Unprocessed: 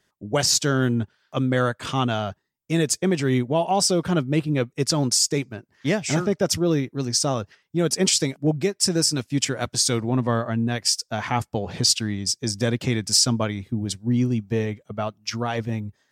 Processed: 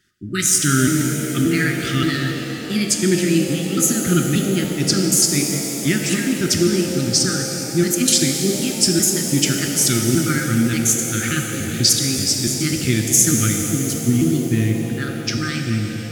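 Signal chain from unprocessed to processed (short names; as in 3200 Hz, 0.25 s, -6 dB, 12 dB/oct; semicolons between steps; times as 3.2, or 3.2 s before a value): trilling pitch shifter +4.5 st, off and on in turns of 0.29 s; brick-wall FIR band-stop 400–1200 Hz; shimmer reverb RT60 3.7 s, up +7 st, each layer -8 dB, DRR 2.5 dB; gain +4.5 dB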